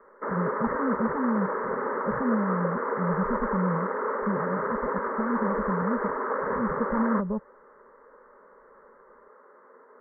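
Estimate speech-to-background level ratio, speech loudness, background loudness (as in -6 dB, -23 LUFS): -1.5 dB, -31.0 LUFS, -29.5 LUFS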